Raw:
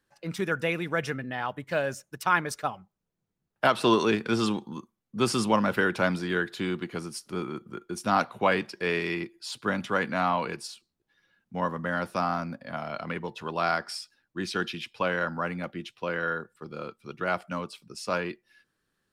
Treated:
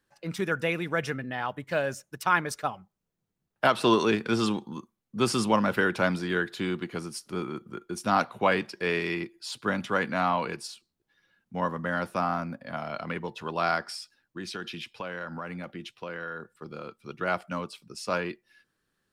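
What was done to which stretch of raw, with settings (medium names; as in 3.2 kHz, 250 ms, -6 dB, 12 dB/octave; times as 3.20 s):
12.09–12.66 s: peaking EQ 4.7 kHz -5.5 dB 0.79 oct
13.85–17.02 s: compression 3:1, threshold -34 dBFS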